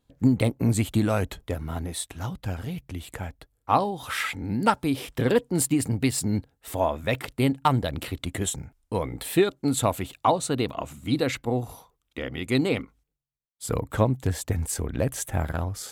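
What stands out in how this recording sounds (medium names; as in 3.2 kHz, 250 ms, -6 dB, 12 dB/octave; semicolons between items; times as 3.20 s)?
noise floor -75 dBFS; spectral tilt -5.5 dB/octave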